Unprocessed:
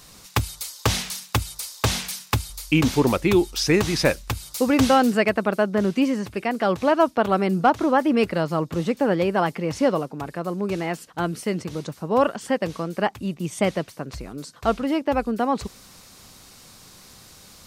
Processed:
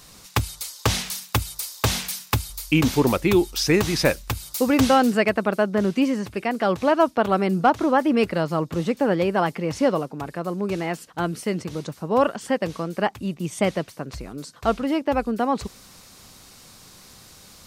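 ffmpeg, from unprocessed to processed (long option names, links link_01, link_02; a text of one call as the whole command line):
ffmpeg -i in.wav -filter_complex "[0:a]asettb=1/sr,asplit=3[link_01][link_02][link_03];[link_01]atrim=end=1.064[link_04];[link_02]atrim=start=1.06:end=4.81,asetpts=PTS-STARTPTS,afade=type=in:duration=0.004:curve=qsin,afade=type=out:start_time=3.746:duration=0.004:curve=qsin,equalizer=frequency=15000:width=1.2:gain=6.5[link_05];[link_03]atrim=start=4.806[link_06];[link_04][link_05]acrossfade=duration=0.004:curve1=hsin:curve2=qsin[link_07];[link_07][link_06]acrossfade=duration=0.004:curve1=qsin:curve2=hsin" out.wav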